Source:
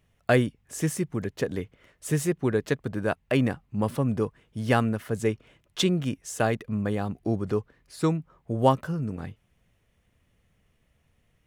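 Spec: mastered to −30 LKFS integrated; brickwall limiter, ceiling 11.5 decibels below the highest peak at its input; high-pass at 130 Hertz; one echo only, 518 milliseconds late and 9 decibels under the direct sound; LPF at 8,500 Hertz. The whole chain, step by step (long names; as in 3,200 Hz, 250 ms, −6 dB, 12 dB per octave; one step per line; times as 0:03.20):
high-pass filter 130 Hz
low-pass filter 8,500 Hz
brickwall limiter −17 dBFS
single-tap delay 518 ms −9 dB
level +1 dB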